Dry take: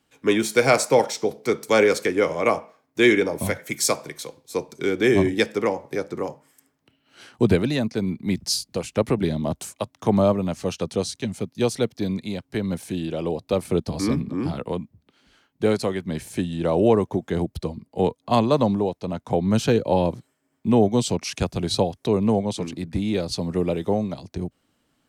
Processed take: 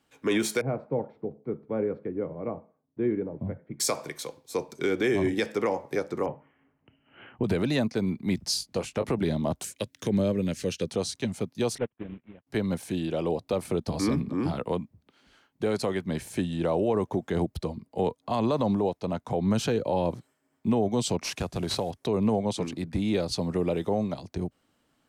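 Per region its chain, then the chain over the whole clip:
0:00.61–0:03.80: one scale factor per block 5 bits + resonant band-pass 130 Hz, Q 0.85 + high-frequency loss of the air 420 metres
0:06.26–0:07.44: Chebyshev low-pass filter 3,000 Hz, order 6 + low-shelf EQ 210 Hz +9.5 dB
0:08.44–0:09.12: high-shelf EQ 8,700 Hz −4 dB + double-tracking delay 21 ms −10 dB
0:09.64–0:10.89: flat-topped bell 910 Hz −14.5 dB 1.2 octaves + one half of a high-frequency compander encoder only
0:11.78–0:12.47: variable-slope delta modulation 16 kbit/s + amplitude modulation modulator 120 Hz, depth 40% + expander for the loud parts 2.5 to 1, over −37 dBFS
0:21.24–0:21.91: variable-slope delta modulation 64 kbit/s + downward compressor 10 to 1, threshold −22 dBFS + floating-point word with a short mantissa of 8 bits
whole clip: parametric band 890 Hz +3 dB 2.4 octaves; brickwall limiter −13.5 dBFS; level −3 dB

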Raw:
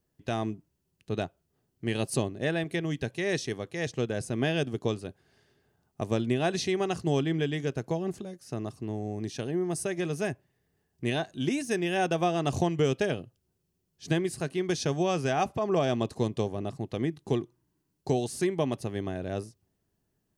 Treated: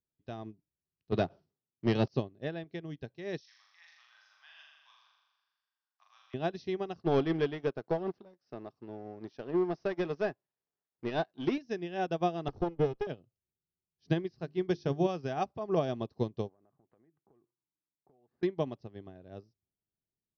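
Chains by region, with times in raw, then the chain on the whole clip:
0:01.12–0:02.08: high-pass filter 100 Hz 24 dB per octave + leveller curve on the samples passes 2 + level that may fall only so fast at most 150 dB per second
0:03.40–0:06.34: one scale factor per block 7 bits + Butterworth high-pass 970 Hz 48 dB per octave + flutter between parallel walls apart 7 metres, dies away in 1.3 s
0:06.99–0:11.58: mu-law and A-law mismatch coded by A + mid-hump overdrive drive 19 dB, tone 1,800 Hz, clips at −15.5 dBFS
0:12.48–0:13.07: lower of the sound and its delayed copy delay 2.4 ms + high-shelf EQ 2,400 Hz −11.5 dB
0:14.39–0:15.07: low-shelf EQ 480 Hz +3 dB + mains-hum notches 50/100/150/200/250/300/350/400 Hz
0:16.49–0:18.43: inverse Chebyshev low-pass filter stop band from 6,800 Hz, stop band 70 dB + spectral tilt +3.5 dB per octave + downward compressor 10 to 1, threshold −43 dBFS
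whole clip: Butterworth low-pass 5,700 Hz 96 dB per octave; parametric band 2,300 Hz −6 dB 1.5 octaves; expander for the loud parts 2.5 to 1, over −36 dBFS

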